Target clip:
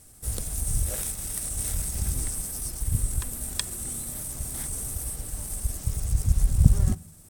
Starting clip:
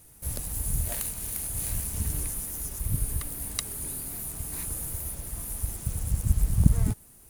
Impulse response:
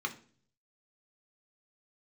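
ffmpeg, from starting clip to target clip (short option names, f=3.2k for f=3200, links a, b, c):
-filter_complex "[0:a]asetrate=38170,aresample=44100,atempo=1.15535,asplit=2[a][b];[1:a]atrim=start_sample=2205,asetrate=31311,aresample=44100[c];[b][c]afir=irnorm=-1:irlink=0,volume=-19.5dB[d];[a][d]amix=inputs=2:normalize=0,volume=2dB"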